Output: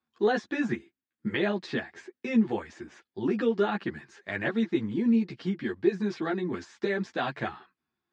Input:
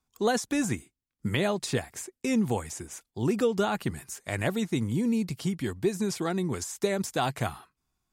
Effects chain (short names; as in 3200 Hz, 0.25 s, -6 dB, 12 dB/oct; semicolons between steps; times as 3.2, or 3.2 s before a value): speaker cabinet 150–4300 Hz, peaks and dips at 240 Hz +3 dB, 350 Hz +7 dB, 1700 Hz +9 dB; ensemble effect